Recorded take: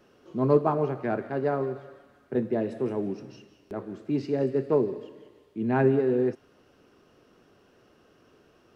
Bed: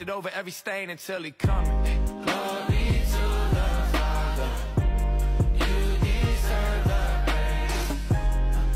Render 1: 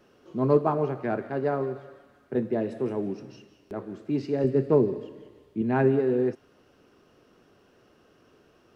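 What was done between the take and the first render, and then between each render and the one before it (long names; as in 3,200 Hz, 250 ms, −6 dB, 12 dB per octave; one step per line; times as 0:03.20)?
0:04.44–0:05.62: low-shelf EQ 260 Hz +8.5 dB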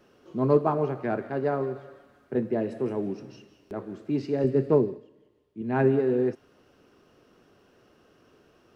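0:02.34–0:02.94: notch filter 3,600 Hz
0:04.75–0:05.81: duck −13.5 dB, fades 0.27 s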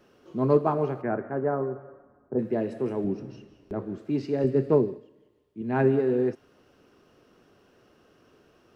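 0:01.01–0:02.38: low-pass filter 2,100 Hz → 1,100 Hz 24 dB per octave
0:03.04–0:03.98: spectral tilt −2 dB per octave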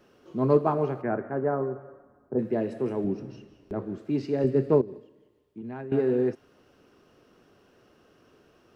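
0:04.81–0:05.92: downward compressor 10 to 1, threshold −34 dBFS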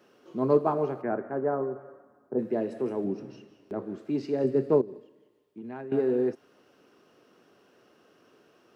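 Bessel high-pass filter 210 Hz, order 2
dynamic equaliser 2,300 Hz, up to −4 dB, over −45 dBFS, Q 0.82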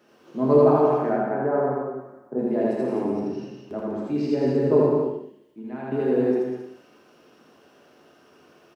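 loudspeakers that aren't time-aligned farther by 28 metres 0 dB, 68 metres −5 dB, 92 metres −7 dB
reverb whose tail is shaped and stops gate 260 ms falling, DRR 0.5 dB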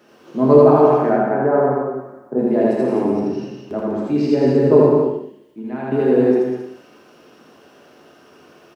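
level +7 dB
brickwall limiter −1 dBFS, peak gain reduction 2 dB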